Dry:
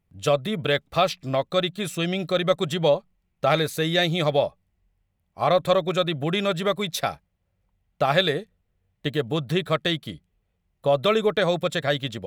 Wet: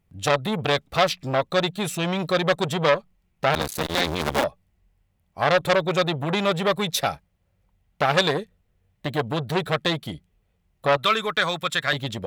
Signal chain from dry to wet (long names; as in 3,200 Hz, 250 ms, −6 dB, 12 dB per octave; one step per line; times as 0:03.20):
0:03.54–0:04.44: sub-harmonics by changed cycles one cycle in 2, muted
0:10.97–0:11.93: low shelf with overshoot 790 Hz −9.5 dB, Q 1.5
saturating transformer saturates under 2,400 Hz
level +4.5 dB